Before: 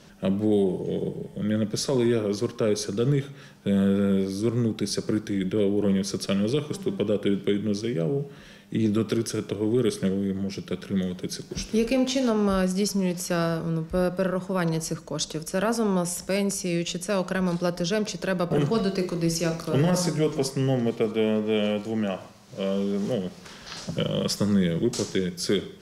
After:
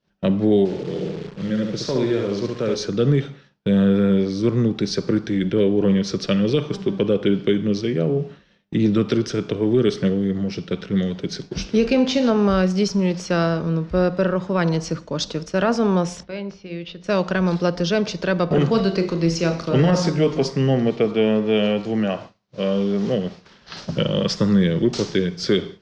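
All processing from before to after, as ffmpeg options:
ffmpeg -i in.wav -filter_complex "[0:a]asettb=1/sr,asplit=3[link_01][link_02][link_03];[link_01]atrim=end=0.654[link_04];[link_02]atrim=start=0.65:end=2.75,asetpts=PTS-STARTPTS,afade=type=in:duration=0.004:curve=qsin,afade=type=out:start_time=2.096:duration=0.004:curve=qsin,flanger=delay=0.9:depth=8:regen=88:speed=1.2:shape=triangular,aecho=1:1:70|140|210|280:0.668|0.214|0.0684|0.0219,atrim=end_sample=92610,acrusher=bits=8:dc=4:mix=0:aa=0.000001[link_05];[link_03]atrim=start=2.746[link_06];[link_04][link_05]acrossfade=duration=0.004:curve1=hsin:curve2=qsin[link_07];[link_07][link_06]acrossfade=duration=0.004:curve1=qsin:curve2=hsin,asettb=1/sr,asplit=3[link_08][link_09][link_10];[link_08]atrim=end=16.234[link_11];[link_09]atrim=start=16.23:end=17.04,asetpts=PTS-STARTPTS,afade=type=in:duration=0.004:curve=qsin,afade=type=out:start_time=0.806:duration=0.004:curve=qsin,lowpass=frequency=4200:width=0.5412,lowpass=frequency=4200:width=1.3066,acompressor=threshold=-39dB:ratio=2:attack=3.2:release=140:knee=1:detection=peak,bandreject=frequency=60:width_type=h:width=6,bandreject=frequency=120:width_type=h:width=6,bandreject=frequency=180:width_type=h:width=6,bandreject=frequency=240:width_type=h:width=6,bandreject=frequency=300:width_type=h:width=6,bandreject=frequency=360:width_type=h:width=6,bandreject=frequency=420:width_type=h:width=6,bandreject=frequency=480:width_type=h:width=6,bandreject=frequency=540:width_type=h:width=6[link_12];[link_10]atrim=start=17.036[link_13];[link_11][link_12]acrossfade=duration=0.004:curve1=hsin:curve2=qsin[link_14];[link_14][link_13]acrossfade=duration=0.004:curve1=qsin:curve2=hsin,lowpass=frequency=5300:width=0.5412,lowpass=frequency=5300:width=1.3066,agate=range=-33dB:threshold=-35dB:ratio=3:detection=peak,volume=5.5dB" out.wav

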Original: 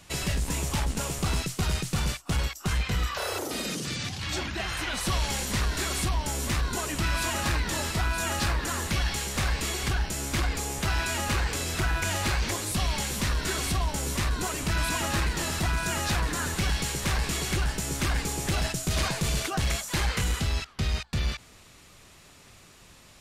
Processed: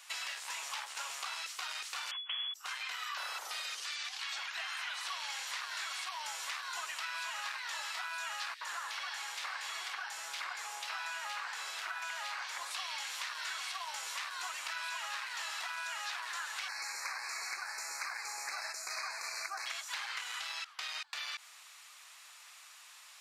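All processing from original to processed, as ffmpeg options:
ffmpeg -i in.wav -filter_complex "[0:a]asettb=1/sr,asplit=3[link_01][link_02][link_03];[link_01]atrim=end=2.114[link_04];[link_02]atrim=start=2.11:end=2.54,asetpts=PTS-STARTPTS,afade=type=in:duration=0.004:curve=qsin,afade=type=out:start_time=0.426:duration=0.004:curve=qsin,aeval=exprs='abs(val(0))':channel_layout=same,lowpass=frequency=2900:width_type=q:width=0.5098,lowpass=frequency=2900:width_type=q:width=0.6013,lowpass=frequency=2900:width_type=q:width=0.9,lowpass=frequency=2900:width_type=q:width=2.563,afreqshift=-3400[link_05];[link_03]atrim=start=2.536[link_06];[link_04][link_05]acrossfade=duration=0.004:curve1=hsin:curve2=qsin[link_07];[link_07][link_06]acrossfade=duration=0.004:curve1=qsin:curve2=hsin,asettb=1/sr,asplit=3[link_08][link_09][link_10];[link_08]atrim=end=8.544[link_11];[link_09]atrim=start=8.54:end=12.71,asetpts=PTS-STARTPTS,afade=type=in:duration=0.004:curve=qsin,afade=type=out:start_time=4.166:duration=0.004:curve=qsin,highshelf=frequency=5300:gain=-9.5,acrossover=split=2400[link_12][link_13];[link_12]adelay=70[link_14];[link_14][link_13]amix=inputs=2:normalize=0,atrim=end_sample=183897[link_15];[link_10]atrim=start=12.706[link_16];[link_11][link_15]acrossfade=duration=0.004:curve1=hsin:curve2=qsin[link_17];[link_17][link_16]acrossfade=duration=0.004:curve1=qsin:curve2=hsin,asettb=1/sr,asplit=3[link_18][link_19][link_20];[link_18]atrim=end=16.684[link_21];[link_19]atrim=start=16.68:end=19.66,asetpts=PTS-STARTPTS,afade=type=in:duration=0.004:curve=qsin,afade=type=out:start_time=2.976:duration=0.004:curve=qsin,asuperstop=centerf=3200:order=12:qfactor=2.1,lowshelf=frequency=190:width_type=q:width=1.5:gain=-12.5[link_22];[link_20]atrim=start=19.656[link_23];[link_21][link_22]acrossfade=duration=0.004:curve1=hsin:curve2=qsin[link_24];[link_24][link_23]acrossfade=duration=0.004:curve1=qsin:curve2=hsin,acrossover=split=5800[link_25][link_26];[link_26]acompressor=threshold=-49dB:ratio=4:attack=1:release=60[link_27];[link_25][link_27]amix=inputs=2:normalize=0,highpass=frequency=930:width=0.5412,highpass=frequency=930:width=1.3066,acompressor=threshold=-37dB:ratio=6" out.wav

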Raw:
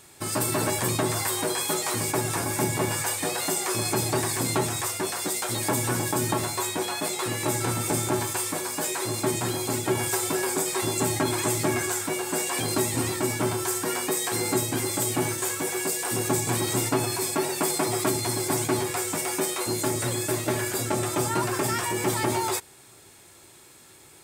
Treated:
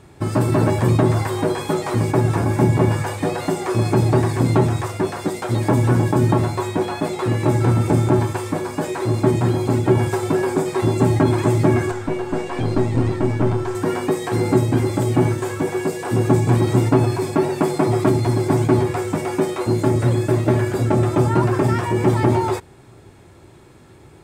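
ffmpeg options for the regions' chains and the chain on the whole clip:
ffmpeg -i in.wav -filter_complex "[0:a]asettb=1/sr,asplit=3[link_01][link_02][link_03];[link_01]atrim=end=11.914[link_04];[link_02]atrim=start=11.91:end=13.75,asetpts=PTS-STARTPTS,afade=type=in:duration=0.004:curve=qsin,afade=type=out:start_time=1.836:duration=0.004:curve=qsin,acrossover=split=8000[link_05][link_06];[link_06]acompressor=threshold=-41dB:ratio=4:attack=1:release=60[link_07];[link_05][link_07]amix=inputs=2:normalize=0,highshelf=frequency=6200:gain=-5,aeval=exprs='(tanh(8.91*val(0)+0.5)-tanh(0.5))/8.91':channel_layout=same[link_08];[link_03]atrim=start=13.746[link_09];[link_04][link_08]acrossfade=duration=0.004:curve1=hsin:curve2=qsin[link_10];[link_10][link_09]acrossfade=duration=0.004:curve1=qsin:curve2=hsin,lowpass=frequency=1000:poles=1,lowshelf=frequency=210:gain=9.5,volume=7.5dB" out.wav

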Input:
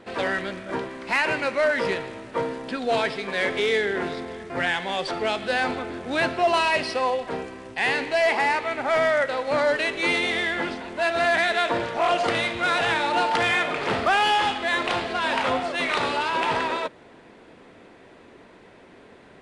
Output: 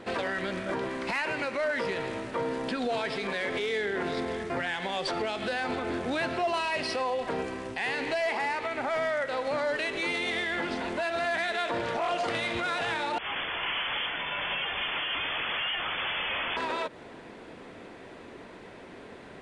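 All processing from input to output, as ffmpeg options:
ffmpeg -i in.wav -filter_complex "[0:a]asettb=1/sr,asplit=3[link_01][link_02][link_03];[link_01]atrim=end=13.184[link_04];[link_02]atrim=start=13.18:end=16.57,asetpts=PTS-STARTPTS,afade=type=in:duration=0.004:curve=qsin,afade=type=out:start_time=3.386:duration=0.004:curve=qsin,asplit=2[link_05][link_06];[link_06]adelay=28,volume=-13.5dB[link_07];[link_05][link_07]amix=inputs=2:normalize=0,atrim=end_sample=149499,aeval=exprs='0.0422*(abs(mod(val(0)/0.0422+3,4)-2)-1)':channel_layout=same,lowpass=frequency=3000:width_type=q:width=0.5098,lowpass=frequency=3000:width_type=q:width=0.6013,lowpass=frequency=3000:width_type=q:width=0.9,lowpass=frequency=3000:width_type=q:width=2.563,afreqshift=-3500[link_08];[link_03]atrim=start=16.566[link_09];[link_04][link_08]acrossfade=duration=0.004:curve1=hsin:curve2=qsin[link_10];[link_10][link_09]acrossfade=duration=0.004:curve1=qsin:curve2=hsin,acompressor=threshold=-29dB:ratio=2,alimiter=level_in=1dB:limit=-24dB:level=0:latency=1:release=79,volume=-1dB,volume=3dB" out.wav

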